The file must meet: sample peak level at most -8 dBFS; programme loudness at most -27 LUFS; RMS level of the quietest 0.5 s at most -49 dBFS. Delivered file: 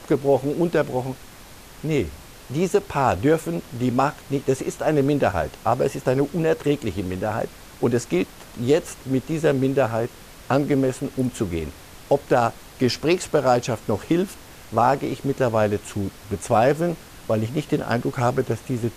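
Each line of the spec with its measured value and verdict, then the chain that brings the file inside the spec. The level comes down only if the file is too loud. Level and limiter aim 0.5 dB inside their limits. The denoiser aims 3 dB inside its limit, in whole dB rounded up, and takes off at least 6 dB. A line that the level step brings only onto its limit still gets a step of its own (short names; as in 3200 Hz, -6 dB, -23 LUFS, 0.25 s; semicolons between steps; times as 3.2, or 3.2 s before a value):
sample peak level -5.5 dBFS: fail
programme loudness -23.0 LUFS: fail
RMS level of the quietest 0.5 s -43 dBFS: fail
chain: denoiser 6 dB, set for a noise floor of -43 dBFS; gain -4.5 dB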